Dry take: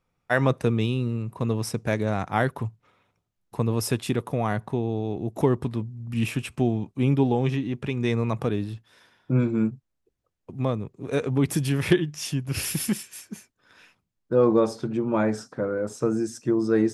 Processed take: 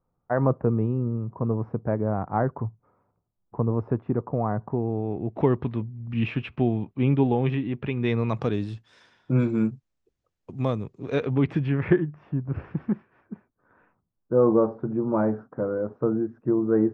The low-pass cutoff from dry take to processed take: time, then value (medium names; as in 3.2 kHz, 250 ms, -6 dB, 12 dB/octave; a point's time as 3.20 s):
low-pass 24 dB/octave
4.60 s 1.2 kHz
5.52 s 3.1 kHz
7.95 s 3.1 kHz
8.63 s 7.7 kHz
10.85 s 7.7 kHz
11.41 s 3.1 kHz
12.23 s 1.3 kHz